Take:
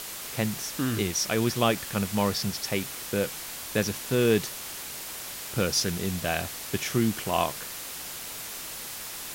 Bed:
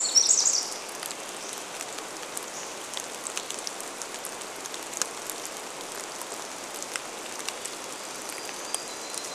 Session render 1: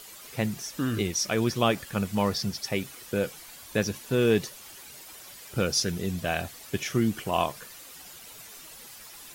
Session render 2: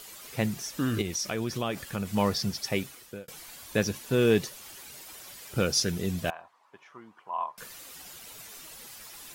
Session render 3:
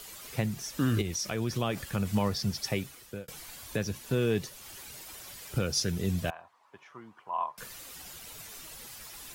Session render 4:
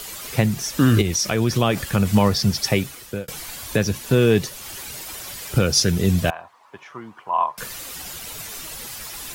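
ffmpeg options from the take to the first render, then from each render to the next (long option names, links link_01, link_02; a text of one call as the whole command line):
ffmpeg -i in.wav -af "afftdn=noise_reduction=11:noise_floor=-38" out.wav
ffmpeg -i in.wav -filter_complex "[0:a]asettb=1/sr,asplit=3[link_01][link_02][link_03];[link_01]atrim=end=1.014[link_04];[link_02]atrim=start=1.01:end=2.1,asetpts=PTS-STARTPTS,afade=type=in:duration=0.004:curve=qsin,afade=type=out:start_time=1.086:duration=0.004:curve=qsin,acompressor=threshold=-28dB:ratio=3:attack=3.2:release=140:knee=1:detection=peak[link_05];[link_03]atrim=start=2.096[link_06];[link_04][link_05]acrossfade=duration=0.004:curve1=hsin:curve2=qsin[link_07];[link_07][link_06]acrossfade=duration=0.004:curve1=qsin:curve2=hsin,asettb=1/sr,asplit=3[link_08][link_09][link_10];[link_08]atrim=end=6.304[link_11];[link_09]atrim=start=6.3:end=7.58,asetpts=PTS-STARTPTS,afade=type=in:duration=0.004:curve=qsin,afade=type=out:start_time=1.276:duration=0.004:curve=qsin,bandpass=frequency=990:width_type=q:width=6[link_12];[link_10]atrim=start=7.576[link_13];[link_11][link_12]acrossfade=duration=0.004:curve1=hsin:curve2=qsin[link_14];[link_14][link_13]acrossfade=duration=0.004:curve1=qsin:curve2=hsin,asplit=2[link_15][link_16];[link_15]atrim=end=3.28,asetpts=PTS-STARTPTS,afade=type=out:start_time=2.78:duration=0.5[link_17];[link_16]atrim=start=3.28,asetpts=PTS-STARTPTS,afade=type=in:duration=0.004:curve=hsin[link_18];[link_17][link_18]concat=n=2:v=0:a=1" out.wav
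ffmpeg -i in.wav -filter_complex "[0:a]acrossover=split=130[link_01][link_02];[link_01]acontrast=70[link_03];[link_03][link_02]amix=inputs=2:normalize=0,alimiter=limit=-18dB:level=0:latency=1:release=413" out.wav
ffmpeg -i in.wav -af "volume=11.5dB" out.wav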